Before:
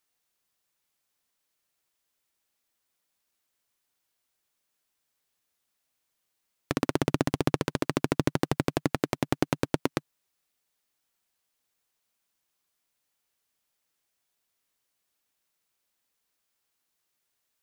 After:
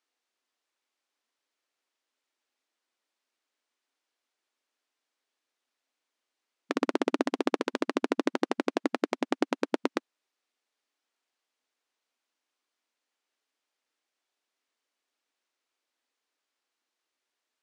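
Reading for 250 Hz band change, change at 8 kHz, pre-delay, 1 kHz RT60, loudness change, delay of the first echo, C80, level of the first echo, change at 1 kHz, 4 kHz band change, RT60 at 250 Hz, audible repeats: -1.0 dB, -7.0 dB, no reverb, no reverb, -1.5 dB, no echo, no reverb, no echo, -0.5 dB, -2.0 dB, no reverb, no echo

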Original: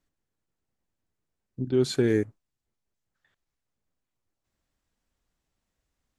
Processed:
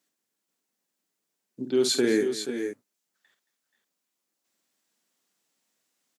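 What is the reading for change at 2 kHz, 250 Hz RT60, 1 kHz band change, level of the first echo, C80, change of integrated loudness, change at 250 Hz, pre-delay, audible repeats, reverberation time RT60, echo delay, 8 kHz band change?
+4.0 dB, no reverb, +2.5 dB, -8.5 dB, no reverb, -0.5 dB, +0.5 dB, no reverb, 3, no reverb, 49 ms, +10.0 dB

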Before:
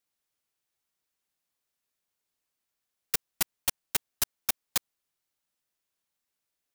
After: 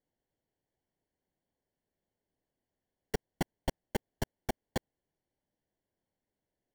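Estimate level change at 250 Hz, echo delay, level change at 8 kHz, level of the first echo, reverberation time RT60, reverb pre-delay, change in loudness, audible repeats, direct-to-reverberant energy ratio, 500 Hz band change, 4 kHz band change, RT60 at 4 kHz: +10.0 dB, no echo, -17.0 dB, no echo, no reverb, no reverb, -9.0 dB, no echo, no reverb, +8.0 dB, -11.5 dB, no reverb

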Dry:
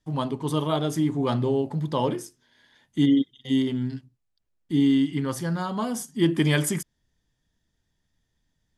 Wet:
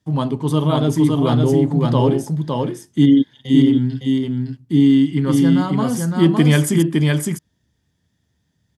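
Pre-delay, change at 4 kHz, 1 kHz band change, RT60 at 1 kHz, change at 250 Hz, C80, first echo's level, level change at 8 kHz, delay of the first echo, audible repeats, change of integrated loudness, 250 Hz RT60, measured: no reverb, +5.5 dB, +6.0 dB, no reverb, +9.5 dB, no reverb, -3.0 dB, +5.5 dB, 560 ms, 1, +8.5 dB, no reverb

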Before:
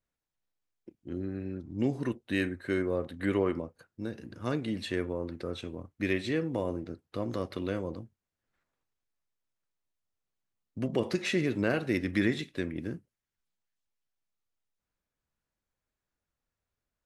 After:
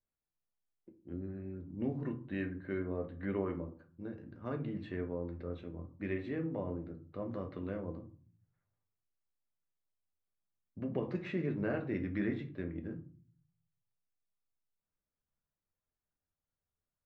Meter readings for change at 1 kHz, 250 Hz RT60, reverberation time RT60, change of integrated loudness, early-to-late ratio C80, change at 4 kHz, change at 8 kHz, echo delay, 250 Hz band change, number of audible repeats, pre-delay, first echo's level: -7.0 dB, 0.80 s, 0.45 s, -7.0 dB, 19.0 dB, -19.0 dB, under -25 dB, no echo, -6.0 dB, no echo, 5 ms, no echo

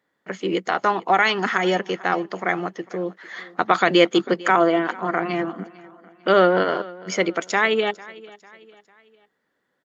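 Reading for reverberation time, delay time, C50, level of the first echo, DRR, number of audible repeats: no reverb, 449 ms, no reverb, -21.0 dB, no reverb, 2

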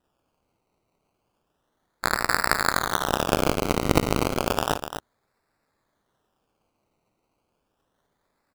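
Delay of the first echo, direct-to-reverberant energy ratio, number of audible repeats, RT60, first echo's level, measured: 57 ms, no reverb, 2, no reverb, -14.5 dB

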